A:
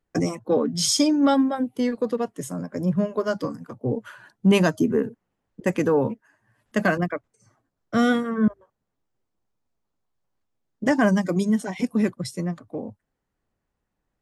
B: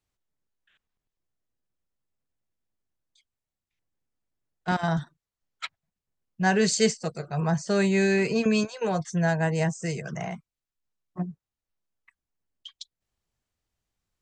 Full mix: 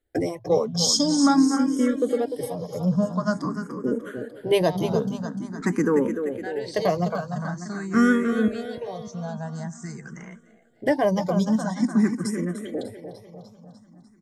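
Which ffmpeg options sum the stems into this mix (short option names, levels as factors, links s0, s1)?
-filter_complex "[0:a]volume=1.33,asplit=2[s0][s1];[s1]volume=0.355[s2];[1:a]acompressor=threshold=0.0316:ratio=2.5,volume=0.891,asplit=2[s3][s4];[s4]volume=0.0944[s5];[s2][s5]amix=inputs=2:normalize=0,aecho=0:1:298|596|894|1192|1490|1788|2086|2384|2682:1|0.57|0.325|0.185|0.106|0.0602|0.0343|0.0195|0.0111[s6];[s0][s3][s6]amix=inputs=3:normalize=0,equalizer=f=2600:w=4.8:g=-11.5,asplit=2[s7][s8];[s8]afreqshift=0.47[s9];[s7][s9]amix=inputs=2:normalize=1"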